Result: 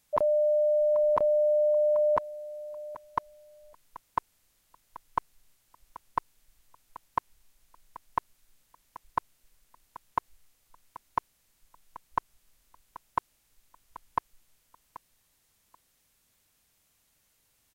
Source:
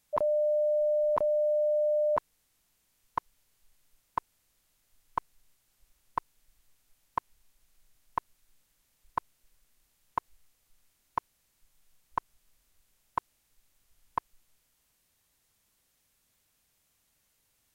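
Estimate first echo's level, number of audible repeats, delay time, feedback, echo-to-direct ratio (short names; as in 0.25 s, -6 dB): -16.5 dB, 2, 0.783 s, 19%, -16.5 dB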